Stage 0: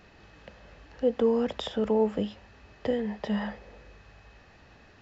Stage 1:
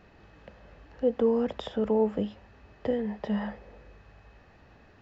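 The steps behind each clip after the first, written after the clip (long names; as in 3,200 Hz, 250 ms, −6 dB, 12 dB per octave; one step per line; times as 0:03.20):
high-shelf EQ 2,400 Hz −9 dB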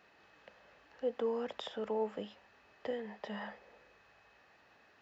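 high-pass filter 1,000 Hz 6 dB per octave
level −2 dB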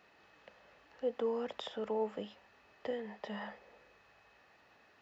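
notch filter 1,600 Hz, Q 22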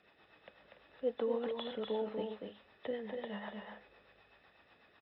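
hearing-aid frequency compression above 3,400 Hz 4 to 1
rotating-speaker cabinet horn 8 Hz
loudspeakers that aren't time-aligned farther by 83 metres −5 dB, 99 metres −11 dB
level +1 dB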